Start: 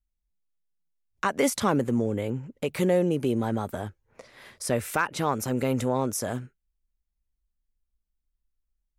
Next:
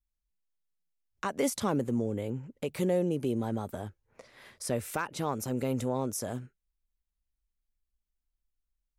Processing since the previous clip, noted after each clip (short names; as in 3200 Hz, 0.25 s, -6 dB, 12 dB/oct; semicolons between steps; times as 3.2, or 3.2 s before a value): dynamic EQ 1700 Hz, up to -5 dB, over -41 dBFS, Q 0.8; gain -4.5 dB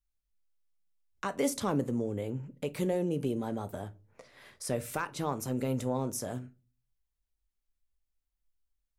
reverb, pre-delay 7 ms, DRR 12 dB; gain -1.5 dB